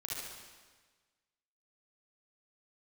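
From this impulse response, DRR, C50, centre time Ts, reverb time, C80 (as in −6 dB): −5.5 dB, −5.0 dB, 115 ms, 1.4 s, 0.5 dB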